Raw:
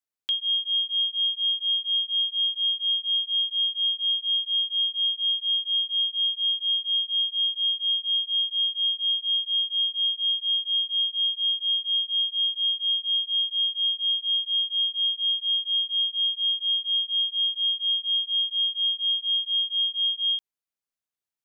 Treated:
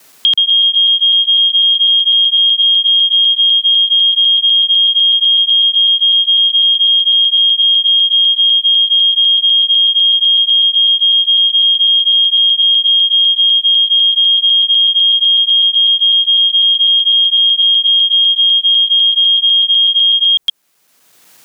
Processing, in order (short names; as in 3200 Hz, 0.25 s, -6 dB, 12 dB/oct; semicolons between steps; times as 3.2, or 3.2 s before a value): local time reversal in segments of 0.125 s; dynamic EQ 3100 Hz, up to -5 dB, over -37 dBFS, Q 0.76; maximiser +31.5 dB; three-band squash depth 70%; gain -5.5 dB